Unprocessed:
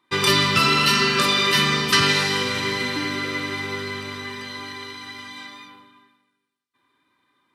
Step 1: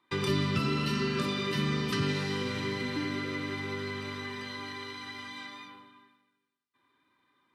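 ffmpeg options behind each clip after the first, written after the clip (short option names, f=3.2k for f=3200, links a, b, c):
-filter_complex "[0:a]highshelf=f=5.8k:g=-6.5,acrossover=split=400[a][b];[b]acompressor=threshold=-34dB:ratio=3[c];[a][c]amix=inputs=2:normalize=0,volume=-3.5dB"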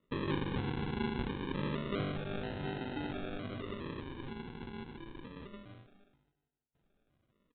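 -af "equalizer=f=850:w=0.84:g=8,aresample=8000,acrusher=samples=10:mix=1:aa=0.000001:lfo=1:lforange=6:lforate=0.27,aresample=44100,volume=-8dB"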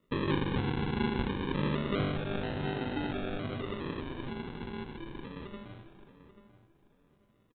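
-filter_complex "[0:a]asplit=2[a][b];[b]adelay=838,lowpass=f=2.1k:p=1,volume=-13dB,asplit=2[c][d];[d]adelay=838,lowpass=f=2.1k:p=1,volume=0.26,asplit=2[e][f];[f]adelay=838,lowpass=f=2.1k:p=1,volume=0.26[g];[a][c][e][g]amix=inputs=4:normalize=0,volume=4.5dB"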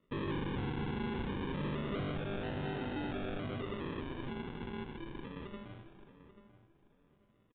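-af "asoftclip=type=hard:threshold=-32dB,aresample=8000,aresample=44100,volume=-2dB"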